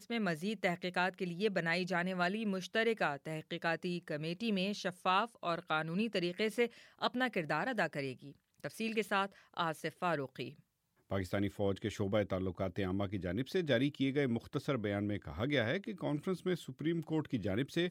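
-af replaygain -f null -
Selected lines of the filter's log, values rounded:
track_gain = +16.0 dB
track_peak = 0.098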